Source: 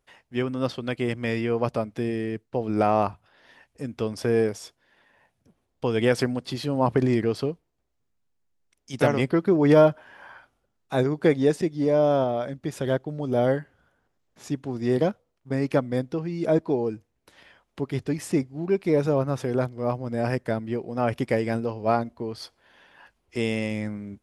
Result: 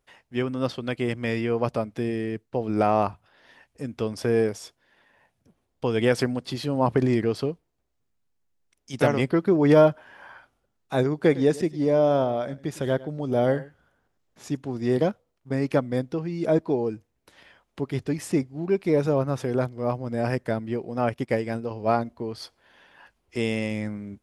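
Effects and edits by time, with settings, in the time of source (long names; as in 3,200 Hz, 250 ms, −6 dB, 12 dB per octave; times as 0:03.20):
0:11.16–0:14.57: single-tap delay 104 ms −19 dB
0:21.09–0:21.71: expander for the loud parts, over −39 dBFS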